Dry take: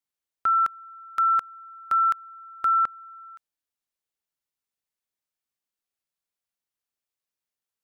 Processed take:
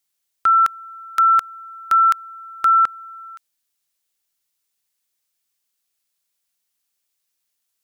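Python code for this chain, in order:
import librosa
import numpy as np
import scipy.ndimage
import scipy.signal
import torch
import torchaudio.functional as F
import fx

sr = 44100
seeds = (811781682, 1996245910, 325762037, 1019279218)

y = fx.high_shelf(x, sr, hz=2300.0, db=11.5)
y = y * librosa.db_to_amplitude(4.0)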